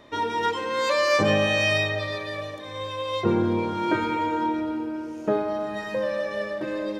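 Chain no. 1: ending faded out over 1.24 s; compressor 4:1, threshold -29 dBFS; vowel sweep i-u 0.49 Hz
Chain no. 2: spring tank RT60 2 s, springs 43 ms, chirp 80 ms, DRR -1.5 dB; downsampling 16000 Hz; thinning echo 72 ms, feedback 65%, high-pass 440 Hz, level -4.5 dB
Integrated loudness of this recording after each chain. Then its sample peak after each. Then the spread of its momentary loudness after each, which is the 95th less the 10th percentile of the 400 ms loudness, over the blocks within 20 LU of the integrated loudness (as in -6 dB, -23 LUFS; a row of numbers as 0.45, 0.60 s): -43.0, -19.5 LUFS; -30.0, -4.5 dBFS; 13, 15 LU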